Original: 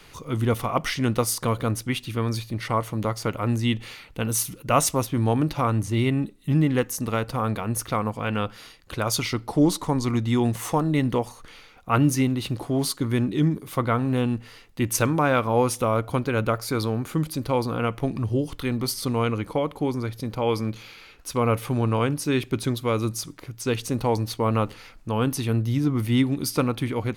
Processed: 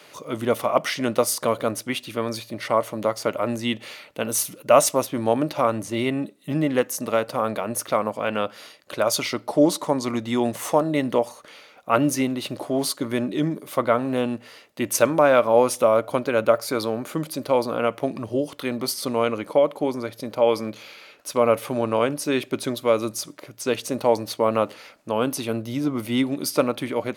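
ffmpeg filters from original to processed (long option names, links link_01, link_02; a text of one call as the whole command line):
ffmpeg -i in.wav -filter_complex "[0:a]asettb=1/sr,asplit=3[link_01][link_02][link_03];[link_01]atrim=end=25.194[link_04];[link_02]atrim=start=25.19:end=26.31,asetpts=PTS-STARTPTS,afade=type=in:duration=0.004:curve=qsin,afade=type=out:start_time=1.116:duration=0.004:curve=qsin,bandreject=frequency=1800:width=12[link_05];[link_03]atrim=start=26.306[link_06];[link_04][link_05]acrossfade=duration=0.004:curve1=hsin:curve2=qsin[link_07];[link_07][link_06]acrossfade=duration=0.004:curve1=qsin:curve2=hsin,highpass=240,equalizer=frequency=600:width_type=o:width=0.24:gain=12.5,volume=1.5dB" out.wav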